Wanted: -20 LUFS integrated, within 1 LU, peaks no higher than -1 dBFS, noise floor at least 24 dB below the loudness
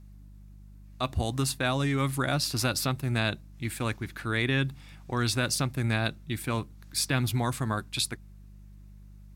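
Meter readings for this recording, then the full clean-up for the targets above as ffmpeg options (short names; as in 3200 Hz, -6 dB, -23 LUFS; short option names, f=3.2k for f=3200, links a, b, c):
hum 50 Hz; harmonics up to 200 Hz; hum level -46 dBFS; loudness -29.0 LUFS; peak -12.0 dBFS; loudness target -20.0 LUFS
-> -af "bandreject=f=50:t=h:w=4,bandreject=f=100:t=h:w=4,bandreject=f=150:t=h:w=4,bandreject=f=200:t=h:w=4"
-af "volume=9dB"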